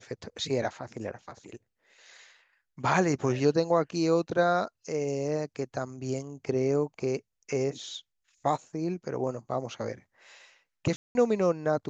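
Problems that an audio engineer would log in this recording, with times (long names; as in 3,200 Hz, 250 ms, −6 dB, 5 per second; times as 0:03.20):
0:10.96–0:11.15: drop-out 191 ms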